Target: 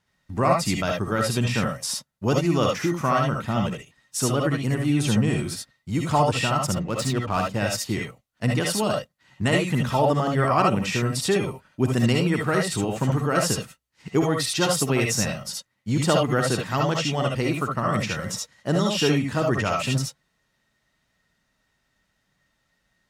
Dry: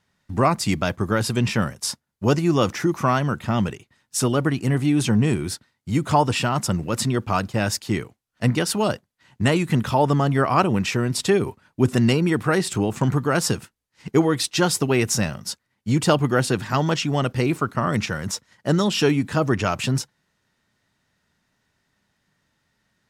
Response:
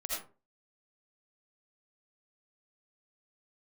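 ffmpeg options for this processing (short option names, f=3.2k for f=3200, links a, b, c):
-filter_complex "[0:a]asettb=1/sr,asplit=3[a][b][c];[a]atrim=end=6.664[d];[b]atrim=start=6.66:end=7.49,asetpts=PTS-STARTPTS,afade=t=in:d=0.004:c=qsin,afade=t=out:st=0.826:d=0.004:c=qsin,adynamicsmooth=sensitivity=7.5:basefreq=1.7k[e];[c]atrim=start=7.486[f];[d][e]acrossfade=d=0.004:c1=hsin:c2=qsin[g];[g][f]acrossfade=d=0.004:c1=qsin:c2=hsin[h];[1:a]atrim=start_sample=2205,atrim=end_sample=3528[i];[h][i]afir=irnorm=-1:irlink=0"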